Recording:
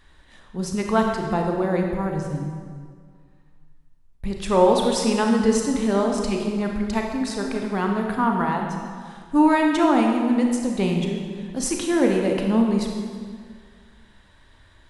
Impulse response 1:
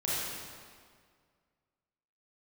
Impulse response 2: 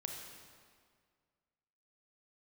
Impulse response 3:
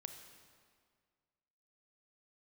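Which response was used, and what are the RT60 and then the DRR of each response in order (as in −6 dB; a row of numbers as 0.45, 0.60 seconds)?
2; 1.9, 1.9, 1.9 seconds; −8.5, 1.5, 6.0 decibels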